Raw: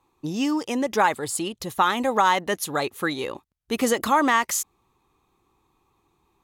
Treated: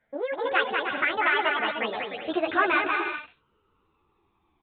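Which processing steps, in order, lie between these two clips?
gliding playback speed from 186% → 92%
downsampling to 8,000 Hz
on a send: bouncing-ball delay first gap 190 ms, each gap 0.6×, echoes 5
on the sum: string-ensemble chorus
level −1 dB

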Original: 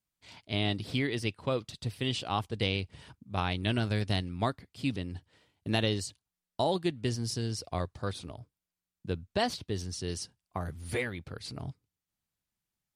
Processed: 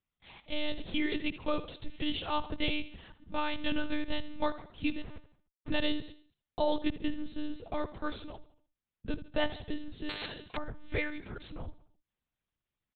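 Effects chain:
0:05.02–0:05.70: comparator with hysteresis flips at −39.5 dBFS
repeating echo 74 ms, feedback 47%, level −14.5 dB
one-pitch LPC vocoder at 8 kHz 300 Hz
0:10.09–0:10.57: every bin compressed towards the loudest bin 10 to 1

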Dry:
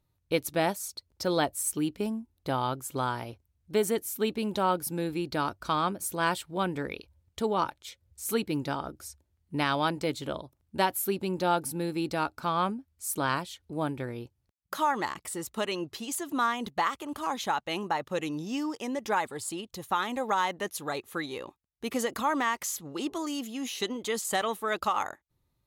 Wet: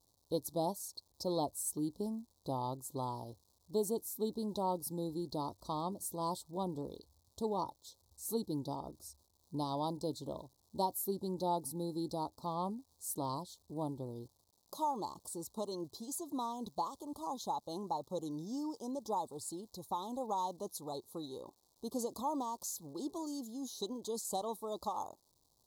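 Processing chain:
surface crackle 310 per second −47 dBFS
elliptic band-stop filter 1,000–4,000 Hz, stop band 40 dB
level −7 dB

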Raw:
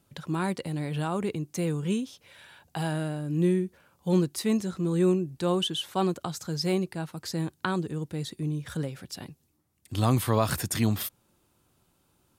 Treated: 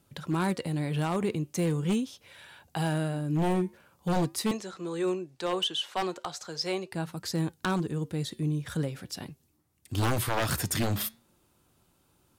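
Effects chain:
0:04.51–0:06.92: three-way crossover with the lows and the highs turned down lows −17 dB, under 390 Hz, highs −14 dB, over 8,000 Hz
wave folding −21.5 dBFS
flanger 0.41 Hz, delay 2.1 ms, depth 5.2 ms, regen −89%
level +5.5 dB

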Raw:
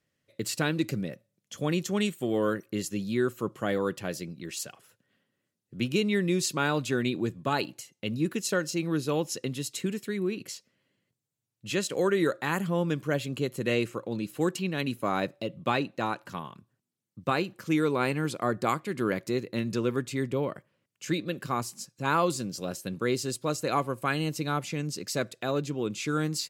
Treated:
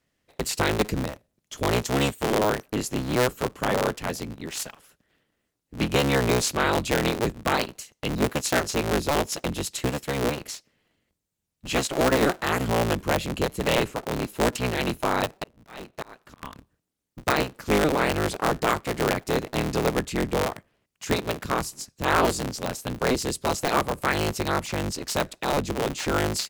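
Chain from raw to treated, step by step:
sub-harmonics by changed cycles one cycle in 3, inverted
0:15.36–0:16.43: volume swells 724 ms
level +4 dB

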